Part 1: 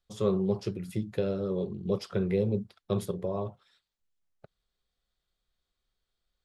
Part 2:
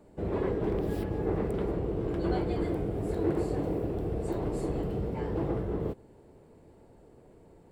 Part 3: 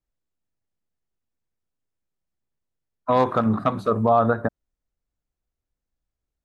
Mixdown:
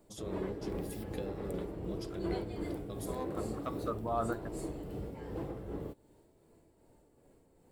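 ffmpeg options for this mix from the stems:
-filter_complex "[0:a]acompressor=threshold=-36dB:ratio=3,volume=0dB,asplit=2[a][b];[1:a]volume=-3dB[c];[2:a]volume=-10dB[d];[b]apad=whole_len=284415[e];[d][e]sidechaincompress=threshold=-48dB:ratio=4:attack=16:release=197[f];[a][c][f]amix=inputs=3:normalize=0,crystalizer=i=2:c=0,tremolo=f=2.6:d=0.4,flanger=delay=2.9:depth=1:regen=74:speed=0.46:shape=triangular"

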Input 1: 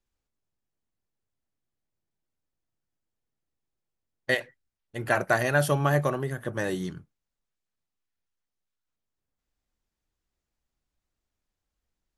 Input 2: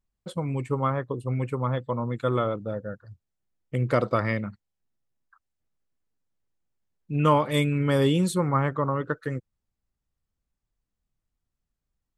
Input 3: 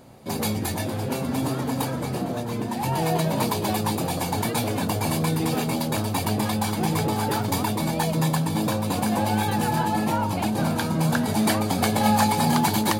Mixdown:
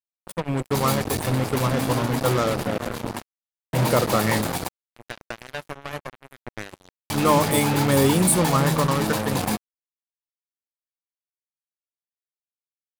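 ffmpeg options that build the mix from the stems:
-filter_complex "[0:a]equalizer=f=84:w=0.73:g=6,alimiter=limit=-15.5dB:level=0:latency=1:release=347,volume=-4dB[a];[1:a]highshelf=f=7.5k:t=q:w=3:g=10,bandreject=f=50:t=h:w=6,bandreject=f=100:t=h:w=6,bandreject=f=150:t=h:w=6,bandreject=f=200:t=h:w=6,acontrast=85,volume=-4dB,asplit=2[b][c];[2:a]alimiter=limit=-12dB:level=0:latency=1:release=384,adelay=450,volume=-0.5dB[d];[c]apad=whole_len=593038[e];[d][e]sidechaingate=range=-33dB:threshold=-49dB:ratio=16:detection=peak[f];[a][b][f]amix=inputs=3:normalize=0,bandreject=f=50:t=h:w=6,bandreject=f=100:t=h:w=6,bandreject=f=150:t=h:w=6,bandreject=f=200:t=h:w=6,bandreject=f=250:t=h:w=6,acrusher=bits=3:mix=0:aa=0.5"

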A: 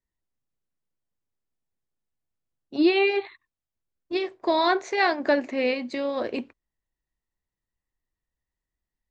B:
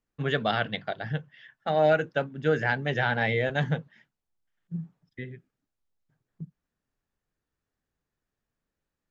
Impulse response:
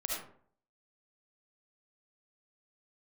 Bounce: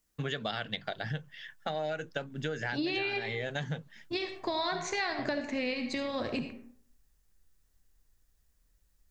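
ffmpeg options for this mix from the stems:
-filter_complex "[0:a]acompressor=threshold=-21dB:ratio=2,asubboost=boost=9:cutoff=130,volume=-4.5dB,asplit=3[a][b][c];[b]volume=-7dB[d];[1:a]bass=f=250:g=0,treble=f=4k:g=6,acompressor=threshold=-34dB:ratio=3,volume=1.5dB[e];[c]apad=whole_len=401586[f];[e][f]sidechaincompress=threshold=-32dB:ratio=8:attack=16:release=694[g];[2:a]atrim=start_sample=2205[h];[d][h]afir=irnorm=-1:irlink=0[i];[a][g][i]amix=inputs=3:normalize=0,highshelf=f=3.5k:g=9,acompressor=threshold=-30dB:ratio=4"

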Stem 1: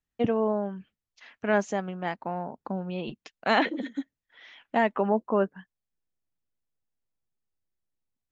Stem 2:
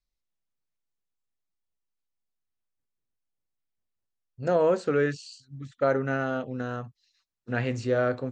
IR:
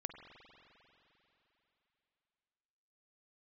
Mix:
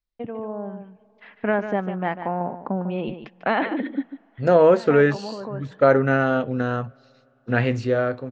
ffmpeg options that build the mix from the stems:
-filter_complex "[0:a]agate=range=-33dB:threshold=-52dB:ratio=3:detection=peak,lowpass=2.4k,acompressor=threshold=-24dB:ratio=6,volume=-5dB,asplit=3[a][b][c];[b]volume=-19dB[d];[c]volume=-10dB[e];[1:a]volume=-2.5dB,asplit=3[f][g][h];[g]volume=-20.5dB[i];[h]apad=whole_len=366706[j];[a][j]sidechaincompress=threshold=-49dB:ratio=8:attack=16:release=421[k];[2:a]atrim=start_sample=2205[l];[d][i]amix=inputs=2:normalize=0[m];[m][l]afir=irnorm=-1:irlink=0[n];[e]aecho=0:1:147:1[o];[k][f][n][o]amix=inputs=4:normalize=0,dynaudnorm=f=130:g=13:m=11dB,lowpass=4.4k"

